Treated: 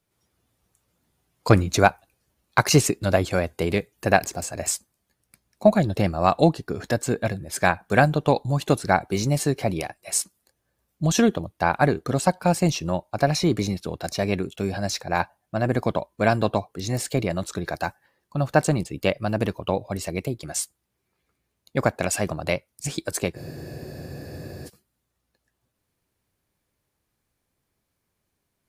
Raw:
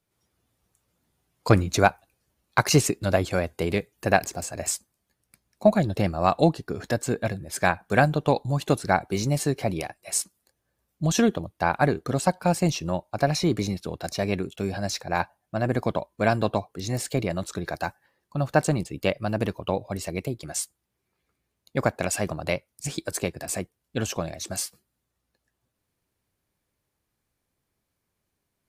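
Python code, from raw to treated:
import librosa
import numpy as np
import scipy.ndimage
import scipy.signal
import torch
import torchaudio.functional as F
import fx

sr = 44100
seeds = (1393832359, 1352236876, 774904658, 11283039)

y = fx.spec_freeze(x, sr, seeds[0], at_s=23.38, hold_s=1.28)
y = F.gain(torch.from_numpy(y), 2.0).numpy()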